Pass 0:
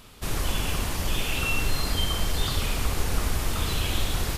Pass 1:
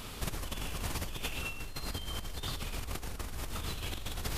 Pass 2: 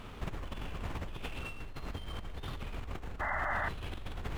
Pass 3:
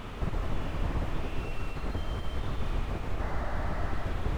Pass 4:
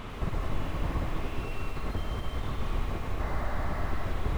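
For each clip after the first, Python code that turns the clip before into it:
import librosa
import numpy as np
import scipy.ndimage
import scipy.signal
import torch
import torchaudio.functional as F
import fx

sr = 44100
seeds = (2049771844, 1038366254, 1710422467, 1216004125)

y1 = fx.over_compress(x, sr, threshold_db=-34.0, ratio=-1.0)
y1 = F.gain(torch.from_numpy(y1), -3.5).numpy()
y2 = scipy.signal.medfilt(y1, 9)
y2 = fx.high_shelf(y2, sr, hz=7000.0, db=-8.0)
y2 = fx.spec_paint(y2, sr, seeds[0], shape='noise', start_s=3.2, length_s=0.49, low_hz=560.0, high_hz=2100.0, level_db=-33.0)
y2 = F.gain(torch.from_numpy(y2), -1.5).numpy()
y3 = y2 + 10.0 ** (-8.0 / 20.0) * np.pad(y2, (int(224 * sr / 1000.0), 0))[:len(y2)]
y3 = fx.rev_freeverb(y3, sr, rt60_s=0.77, hf_ratio=0.8, predelay_ms=115, drr_db=5.0)
y3 = fx.slew_limit(y3, sr, full_power_hz=6.1)
y3 = F.gain(torch.from_numpy(y3), 7.0).numpy()
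y4 = fx.small_body(y3, sr, hz=(1100.0, 2100.0, 3900.0), ring_ms=45, db=6)
y4 = fx.echo_crushed(y4, sr, ms=101, feedback_pct=55, bits=8, wet_db=-11.5)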